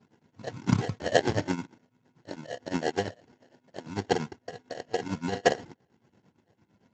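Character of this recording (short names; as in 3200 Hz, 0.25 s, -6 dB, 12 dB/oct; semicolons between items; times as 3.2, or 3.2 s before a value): phasing stages 12, 1.5 Hz, lowest notch 360–1400 Hz; tremolo triangle 8.8 Hz, depth 85%; aliases and images of a low sample rate 1200 Hz, jitter 0%; Speex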